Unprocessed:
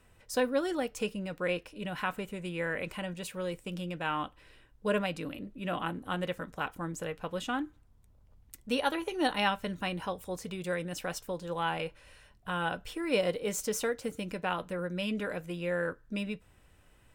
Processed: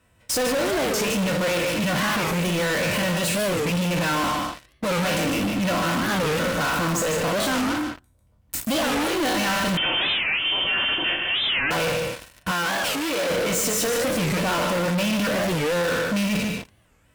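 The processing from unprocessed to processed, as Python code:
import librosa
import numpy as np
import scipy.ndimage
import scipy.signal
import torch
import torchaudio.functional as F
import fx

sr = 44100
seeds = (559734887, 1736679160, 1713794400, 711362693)

p1 = fx.spec_trails(x, sr, decay_s=0.52)
p2 = scipy.signal.sosfilt(scipy.signal.butter(2, 42.0, 'highpass', fs=sr, output='sos'), p1)
p3 = fx.fuzz(p2, sr, gain_db=50.0, gate_db=-48.0)
p4 = p2 + F.gain(torch.from_numpy(p3), -5.5).numpy()
p5 = fx.notch_comb(p4, sr, f0_hz=410.0)
p6 = p5 + fx.echo_single(p5, sr, ms=148, db=-5.5, dry=0)
p7 = 10.0 ** (-22.0 / 20.0) * np.tanh(p6 / 10.0 ** (-22.0 / 20.0))
p8 = fx.freq_invert(p7, sr, carrier_hz=3300, at=(9.77, 11.71))
p9 = fx.low_shelf(p8, sr, hz=230.0, db=-12.0, at=(12.51, 13.3))
p10 = fx.record_warp(p9, sr, rpm=45.0, depth_cents=250.0)
y = F.gain(torch.from_numpy(p10), 1.5).numpy()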